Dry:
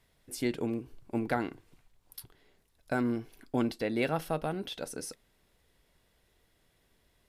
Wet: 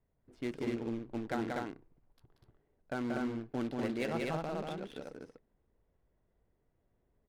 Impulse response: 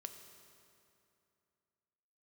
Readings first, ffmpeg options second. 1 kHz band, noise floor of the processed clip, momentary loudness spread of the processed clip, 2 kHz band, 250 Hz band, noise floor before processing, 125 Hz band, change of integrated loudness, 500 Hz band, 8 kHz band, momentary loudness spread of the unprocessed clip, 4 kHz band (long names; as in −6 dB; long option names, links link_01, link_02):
−4.0 dB, −78 dBFS, 12 LU, −4.0 dB, −3.5 dB, −71 dBFS, −4.0 dB, −4.0 dB, −3.5 dB, −13.0 dB, 13 LU, −6.5 dB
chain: -af "acrusher=bits=3:mode=log:mix=0:aa=0.000001,aecho=1:1:183.7|244.9:0.708|0.794,adynamicsmooth=sensitivity=7:basefreq=970,volume=-7dB"